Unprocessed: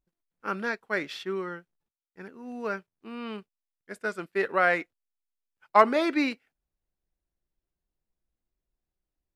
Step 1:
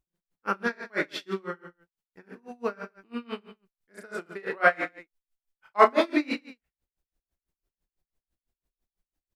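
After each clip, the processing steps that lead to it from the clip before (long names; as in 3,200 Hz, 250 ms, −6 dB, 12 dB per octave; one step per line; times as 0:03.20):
on a send: reverse bouncing-ball delay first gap 30 ms, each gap 1.25×, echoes 5
on the sum: tremolo with a sine in dB 6 Hz, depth 29 dB
level +4 dB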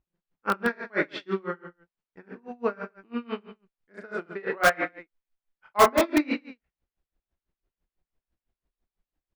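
Bessel low-pass filter 2,500 Hz, order 2
in parallel at −7 dB: wrap-around overflow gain 15 dB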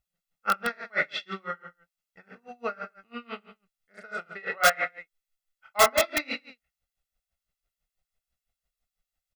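tilt shelving filter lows −6.5 dB, about 1,300 Hz
comb filter 1.5 ms, depth 73%
level −2 dB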